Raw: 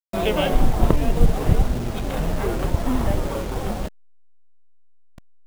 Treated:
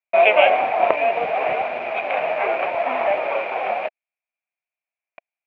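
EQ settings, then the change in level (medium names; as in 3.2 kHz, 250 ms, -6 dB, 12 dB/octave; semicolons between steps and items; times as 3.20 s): resonant high-pass 670 Hz, resonance Q 4.9; resonant low-pass 2.4 kHz, resonance Q 12; distance through air 130 m; 0.0 dB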